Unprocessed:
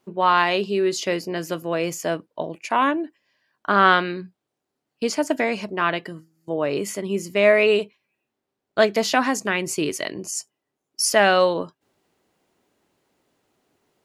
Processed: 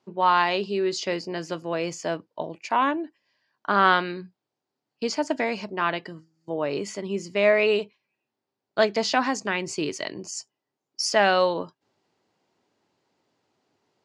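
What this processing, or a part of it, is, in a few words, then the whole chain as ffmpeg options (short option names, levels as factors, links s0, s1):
car door speaker: -af "highpass=93,equalizer=f=110:t=q:w=4:g=4,equalizer=f=890:t=q:w=4:g=4,equalizer=f=4700:t=q:w=4:g=5,lowpass=f=7200:w=0.5412,lowpass=f=7200:w=1.3066,volume=0.631"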